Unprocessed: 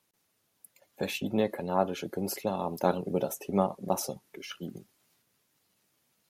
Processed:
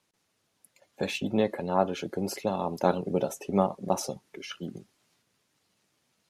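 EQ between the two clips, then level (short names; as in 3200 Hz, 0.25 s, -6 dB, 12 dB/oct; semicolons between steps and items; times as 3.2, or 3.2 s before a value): LPF 8500 Hz 12 dB/oct; +2.0 dB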